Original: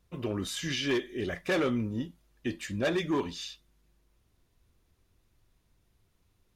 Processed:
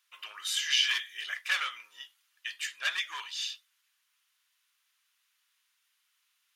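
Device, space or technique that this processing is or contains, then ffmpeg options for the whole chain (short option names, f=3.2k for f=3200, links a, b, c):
headphones lying on a table: -filter_complex "[0:a]highpass=f=1.3k:w=0.5412,highpass=f=1.3k:w=1.3066,equalizer=f=3k:t=o:w=0.26:g=5,asettb=1/sr,asplit=3[a][b][c];[a]atrim=end=0.714[d];[b]atrim=start=0.71:end=1.24,asetpts=PTS-STARTPTS,afade=t=in:d=0.004:c=qsin,afade=t=out:st=0.526:d=0.004:c=qsin,highshelf=f=4.8k:g=4.5[e];[c]atrim=start=1.236[f];[d][e]acrossfade=d=0.004:c1=hsin:c2=qsin[g];[g][f]acrossfade=d=0.004:c1=qsin:c2=hsin,volume=4.5dB"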